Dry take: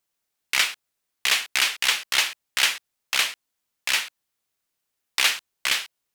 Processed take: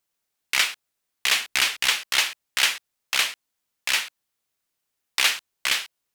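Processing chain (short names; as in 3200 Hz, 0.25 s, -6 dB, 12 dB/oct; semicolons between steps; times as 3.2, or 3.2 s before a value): 1.35–1.89 low shelf 210 Hz +8.5 dB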